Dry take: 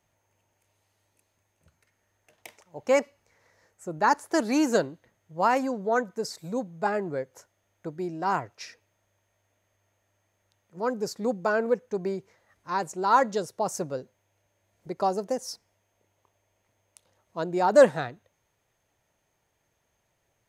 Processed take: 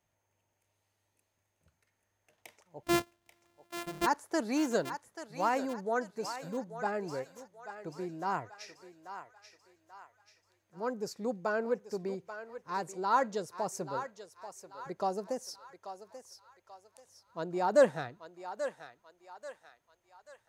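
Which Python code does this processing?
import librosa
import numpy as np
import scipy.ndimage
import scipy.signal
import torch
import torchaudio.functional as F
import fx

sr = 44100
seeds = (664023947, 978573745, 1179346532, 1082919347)

y = fx.sample_sort(x, sr, block=128, at=(2.82, 4.05), fade=0.02)
y = fx.echo_thinned(y, sr, ms=836, feedback_pct=48, hz=660.0, wet_db=-9.0)
y = F.gain(torch.from_numpy(y), -7.0).numpy()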